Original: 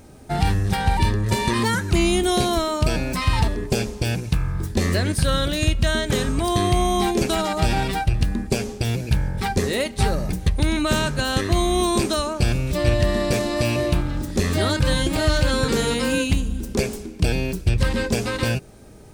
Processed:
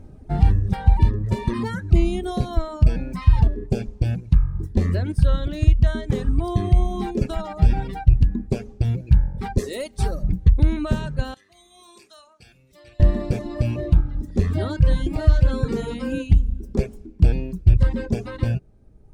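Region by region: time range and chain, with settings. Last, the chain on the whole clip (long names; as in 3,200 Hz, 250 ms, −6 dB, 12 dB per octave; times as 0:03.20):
0:09.58–0:10.23: bass and treble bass −7 dB, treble +13 dB + upward compression, threshold −28 dBFS + gain into a clipping stage and back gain 12 dB
0:11.34–0:13.00: low-pass filter 3,900 Hz 6 dB per octave + first difference + flutter between parallel walls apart 7.9 metres, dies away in 0.24 s
whole clip: reverb reduction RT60 1.8 s; spectral tilt −3.5 dB per octave; level −7 dB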